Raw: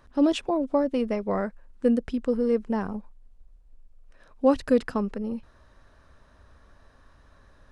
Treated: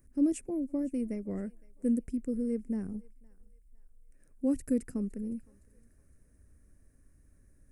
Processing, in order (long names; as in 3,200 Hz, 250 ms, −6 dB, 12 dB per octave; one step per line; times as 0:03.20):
drawn EQ curve 320 Hz 0 dB, 1,000 Hz −24 dB, 2,200 Hz −8 dB, 3,500 Hz −26 dB, 8,700 Hz +11 dB
on a send: feedback echo with a high-pass in the loop 512 ms, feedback 48%, high-pass 770 Hz, level −21.5 dB
on the sum: level −5 dB